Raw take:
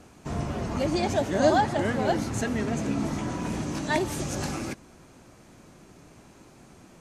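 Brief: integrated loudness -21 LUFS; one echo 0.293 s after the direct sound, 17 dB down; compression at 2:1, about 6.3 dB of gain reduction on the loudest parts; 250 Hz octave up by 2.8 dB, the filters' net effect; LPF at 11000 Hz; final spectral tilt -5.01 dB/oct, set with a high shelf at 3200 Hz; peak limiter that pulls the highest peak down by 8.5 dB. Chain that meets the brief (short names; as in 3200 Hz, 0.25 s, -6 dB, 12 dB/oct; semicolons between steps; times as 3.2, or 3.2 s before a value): LPF 11000 Hz; bell 250 Hz +3.5 dB; high shelf 3200 Hz +5 dB; compressor 2:1, threshold -26 dBFS; limiter -23 dBFS; echo 0.293 s -17 dB; gain +11 dB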